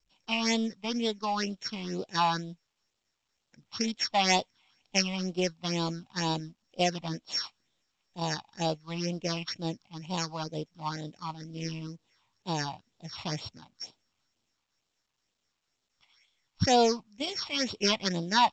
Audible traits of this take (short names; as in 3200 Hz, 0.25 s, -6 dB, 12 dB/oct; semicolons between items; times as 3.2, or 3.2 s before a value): a buzz of ramps at a fixed pitch in blocks of 8 samples; phasing stages 6, 2.1 Hz, lowest notch 420–1800 Hz; µ-law